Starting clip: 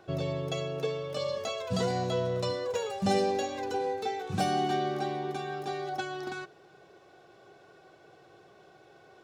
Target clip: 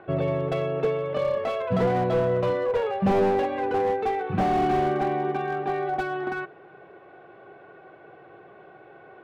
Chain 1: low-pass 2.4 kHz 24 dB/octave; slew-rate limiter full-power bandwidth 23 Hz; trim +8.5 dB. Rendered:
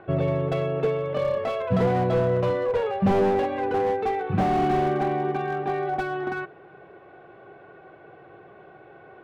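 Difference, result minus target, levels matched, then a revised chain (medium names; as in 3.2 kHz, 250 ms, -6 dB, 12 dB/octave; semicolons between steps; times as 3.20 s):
125 Hz band +2.5 dB
low-pass 2.4 kHz 24 dB/octave; bass shelf 110 Hz -8.5 dB; slew-rate limiter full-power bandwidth 23 Hz; trim +8.5 dB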